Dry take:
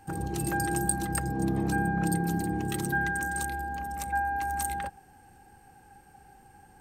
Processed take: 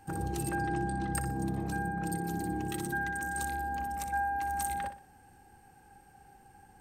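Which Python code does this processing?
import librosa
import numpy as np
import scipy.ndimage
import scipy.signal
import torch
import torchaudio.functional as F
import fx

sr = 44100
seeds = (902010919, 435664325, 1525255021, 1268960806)

p1 = fx.lowpass(x, sr, hz=3400.0, slope=12, at=(0.49, 1.15))
p2 = fx.rider(p1, sr, range_db=3, speed_s=0.5)
p3 = p2 + fx.echo_feedback(p2, sr, ms=61, feedback_pct=33, wet_db=-10.5, dry=0)
y = p3 * librosa.db_to_amplitude(-4.5)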